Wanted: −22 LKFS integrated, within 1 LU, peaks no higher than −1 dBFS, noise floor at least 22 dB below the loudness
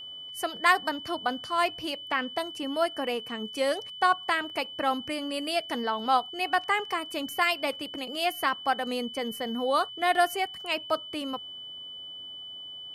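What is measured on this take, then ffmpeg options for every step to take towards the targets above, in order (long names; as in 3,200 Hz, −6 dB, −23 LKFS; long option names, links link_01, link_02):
interfering tone 3,000 Hz; level of the tone −39 dBFS; integrated loudness −28.5 LKFS; sample peak −8.0 dBFS; target loudness −22.0 LKFS
→ -af "bandreject=frequency=3000:width=30"
-af "volume=6.5dB"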